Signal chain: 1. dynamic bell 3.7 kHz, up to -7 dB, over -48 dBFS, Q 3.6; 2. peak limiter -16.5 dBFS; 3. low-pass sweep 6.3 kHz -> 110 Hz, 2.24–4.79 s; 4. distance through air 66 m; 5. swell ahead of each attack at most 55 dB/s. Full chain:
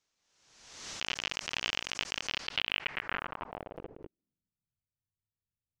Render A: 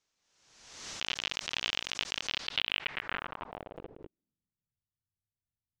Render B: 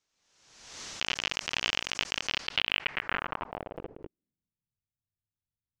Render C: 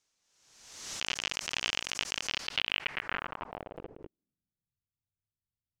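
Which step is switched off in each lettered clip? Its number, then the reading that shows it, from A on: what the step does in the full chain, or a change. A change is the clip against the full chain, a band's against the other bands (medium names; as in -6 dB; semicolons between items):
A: 1, 4 kHz band +2.5 dB; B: 2, mean gain reduction 3.5 dB; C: 4, 8 kHz band +4.5 dB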